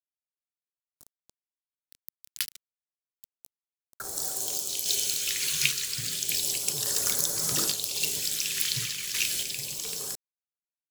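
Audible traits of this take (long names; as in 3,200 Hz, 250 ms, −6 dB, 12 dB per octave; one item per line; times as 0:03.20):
a quantiser's noise floor 6 bits, dither none
phaser sweep stages 2, 0.31 Hz, lowest notch 720–2,500 Hz
sample-and-hold tremolo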